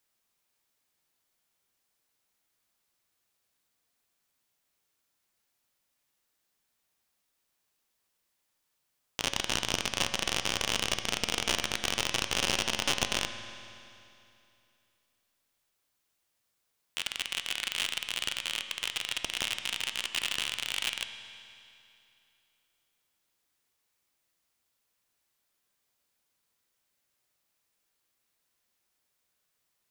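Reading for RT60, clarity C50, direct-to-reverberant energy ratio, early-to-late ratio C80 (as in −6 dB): 2.7 s, 9.0 dB, 7.5 dB, 9.5 dB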